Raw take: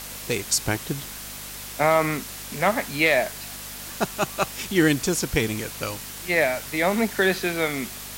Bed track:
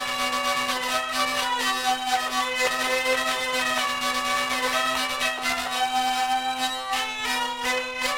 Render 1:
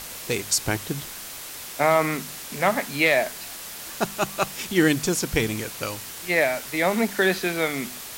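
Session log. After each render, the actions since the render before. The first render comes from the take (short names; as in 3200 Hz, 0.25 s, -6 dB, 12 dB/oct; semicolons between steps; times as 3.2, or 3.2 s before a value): de-hum 50 Hz, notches 5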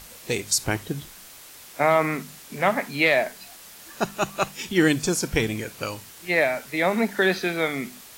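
noise print and reduce 8 dB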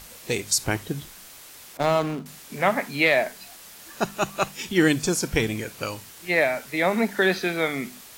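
1.77–2.26 median filter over 25 samples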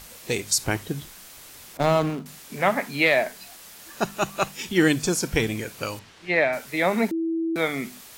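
1.37–2.1 low shelf 230 Hz +6.5 dB; 5.99–6.53 LPF 4000 Hz; 7.11–7.56 bleep 328 Hz -22.5 dBFS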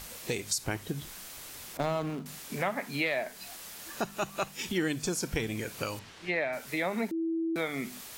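compressor 2.5:1, threshold -32 dBFS, peak gain reduction 12 dB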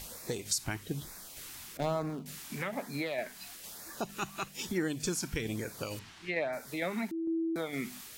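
LFO notch sine 1.1 Hz 470–3100 Hz; tremolo saw down 2.2 Hz, depth 35%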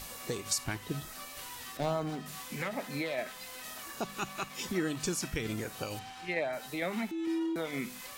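add bed track -23.5 dB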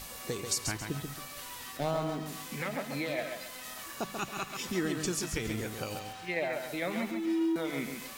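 lo-fi delay 0.137 s, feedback 35%, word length 9-bit, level -5.5 dB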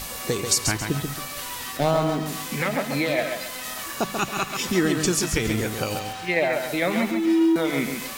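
gain +10.5 dB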